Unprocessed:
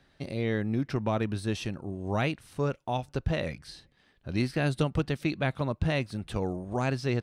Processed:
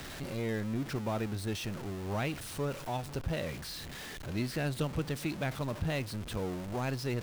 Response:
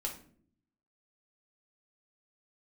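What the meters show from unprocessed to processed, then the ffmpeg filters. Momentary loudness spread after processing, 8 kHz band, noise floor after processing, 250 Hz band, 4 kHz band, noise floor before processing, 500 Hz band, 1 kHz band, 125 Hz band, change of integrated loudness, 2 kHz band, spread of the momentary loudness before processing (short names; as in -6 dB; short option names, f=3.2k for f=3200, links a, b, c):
5 LU, +3.5 dB, -44 dBFS, -5.0 dB, -1.5 dB, -66 dBFS, -5.0 dB, -5.0 dB, -5.0 dB, -5.0 dB, -4.5 dB, 8 LU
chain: -filter_complex "[0:a]aeval=exprs='val(0)+0.5*0.0299*sgn(val(0))':c=same,asplit=2[a][b];[1:a]atrim=start_sample=2205[c];[b][c]afir=irnorm=-1:irlink=0,volume=-21dB[d];[a][d]amix=inputs=2:normalize=0,volume=-8dB"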